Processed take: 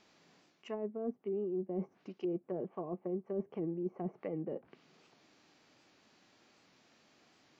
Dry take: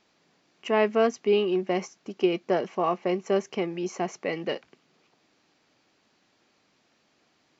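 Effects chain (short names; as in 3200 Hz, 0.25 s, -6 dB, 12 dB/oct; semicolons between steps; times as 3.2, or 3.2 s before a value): harmonic-percussive split percussive -5 dB; reverse; compressor 8:1, threshold -35 dBFS, peak gain reduction 18 dB; reverse; treble ducked by the level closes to 460 Hz, closed at -36 dBFS; record warp 78 rpm, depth 100 cents; gain +2.5 dB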